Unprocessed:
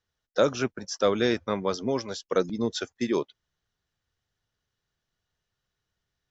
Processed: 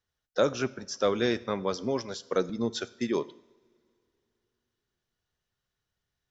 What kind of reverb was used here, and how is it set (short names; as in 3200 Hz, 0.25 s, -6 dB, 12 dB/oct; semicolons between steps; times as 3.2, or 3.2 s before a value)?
two-slope reverb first 0.72 s, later 3.1 s, from -21 dB, DRR 15.5 dB; gain -2.5 dB